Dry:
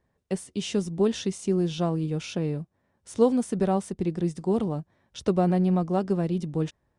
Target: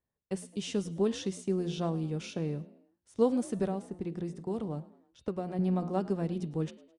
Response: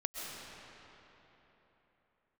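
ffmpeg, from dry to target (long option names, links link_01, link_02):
-filter_complex "[0:a]agate=range=-11dB:threshold=-37dB:ratio=16:detection=peak,asettb=1/sr,asplit=3[link_01][link_02][link_03];[link_01]atrim=end=3.664[link_04];[link_02]atrim=start=3.66:end=5.59,asetpts=PTS-STARTPTS,afade=type=in:duration=0.004:curve=qsin,afade=type=out:start_time=1.926:duration=0.004:curve=qsin,acrossover=split=700|2000[link_05][link_06][link_07];[link_05]acompressor=threshold=-26dB:ratio=4[link_08];[link_06]acompressor=threshold=-40dB:ratio=4[link_09];[link_07]acompressor=threshold=-55dB:ratio=4[link_10];[link_08][link_09][link_10]amix=inputs=3:normalize=0[link_11];[link_03]atrim=start=5.586[link_12];[link_04][link_11]acrossfade=duration=0.004:curve1=hsin:curve2=qsin[link_13];[link_13][link_12]acrossfade=duration=0.004:curve1=qsin:curve2=hsin,bandreject=frequency=177.5:width_type=h:width=4,bandreject=frequency=355:width_type=h:width=4,bandreject=frequency=532.5:width_type=h:width=4,bandreject=frequency=710:width_type=h:width=4,bandreject=frequency=887.5:width_type=h:width=4,bandreject=frequency=1065:width_type=h:width=4,bandreject=frequency=1242.5:width_type=h:width=4,bandreject=frequency=1420:width_type=h:width=4,bandreject=frequency=1597.5:width_type=h:width=4,bandreject=frequency=1775:width_type=h:width=4,bandreject=frequency=1952.5:width_type=h:width=4,bandreject=frequency=2130:width_type=h:width=4,bandreject=frequency=2307.5:width_type=h:width=4,bandreject=frequency=2485:width_type=h:width=4,bandreject=frequency=2662.5:width_type=h:width=4,bandreject=frequency=2840:width_type=h:width=4,bandreject=frequency=3017.5:width_type=h:width=4,bandreject=frequency=3195:width_type=h:width=4,bandreject=frequency=3372.5:width_type=h:width=4,bandreject=frequency=3550:width_type=h:width=4,bandreject=frequency=3727.5:width_type=h:width=4,bandreject=frequency=3905:width_type=h:width=4,bandreject=frequency=4082.5:width_type=h:width=4,bandreject=frequency=4260:width_type=h:width=4,bandreject=frequency=4437.5:width_type=h:width=4,bandreject=frequency=4615:width_type=h:width=4,asplit=2[link_14][link_15];[link_15]asplit=3[link_16][link_17][link_18];[link_16]adelay=106,afreqshift=57,volume=-20dB[link_19];[link_17]adelay=212,afreqshift=114,volume=-27.1dB[link_20];[link_18]adelay=318,afreqshift=171,volume=-34.3dB[link_21];[link_19][link_20][link_21]amix=inputs=3:normalize=0[link_22];[link_14][link_22]amix=inputs=2:normalize=0,volume=-5.5dB"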